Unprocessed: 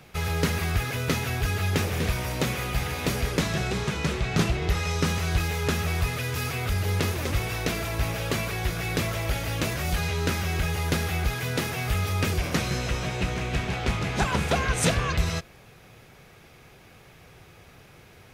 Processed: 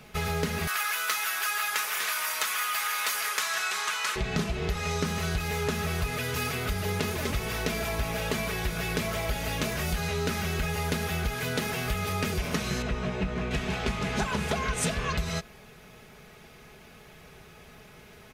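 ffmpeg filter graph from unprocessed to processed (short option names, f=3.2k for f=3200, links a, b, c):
-filter_complex "[0:a]asettb=1/sr,asplit=3[a][b][c];[a]atrim=end=0.674[d];[b]atrim=start=0.67:end=4.16,asetpts=PTS-STARTPTS,afade=t=in:d=0.004:c=qsin,afade=t=out:st=3.486:d=0.004:c=qsin,highpass=f=1.2k:t=q:w=2,highshelf=f=6.2k:g=10.5[e];[c]atrim=start=4.156[f];[d][e]acrossfade=d=0.004:c1=hsin:c2=qsin[g];[g][f]acrossfade=d=0.004:c1=qsin:c2=hsin,asettb=1/sr,asplit=3[h][i][j];[h]atrim=end=12.824[k];[i]atrim=start=12.82:end=13.51,asetpts=PTS-STARTPTS,afade=t=in:d=0.004:c=qsin,afade=t=out:st=0.686:d=0.004:c=qsin,lowpass=f=1.6k:p=1,asplit=2[l][m];[m]adelay=21,volume=-10.5dB[n];[l][n]amix=inputs=2:normalize=0,atrim=end_sample=30429[o];[j]atrim=start=13.506[p];[k][o]acrossfade=d=0.004:c1=hsin:c2=qsin[q];[q][p]acrossfade=d=0.004:c1=qsin:c2=hsin,aecho=1:1:4.7:0.55,acompressor=threshold=-25dB:ratio=6"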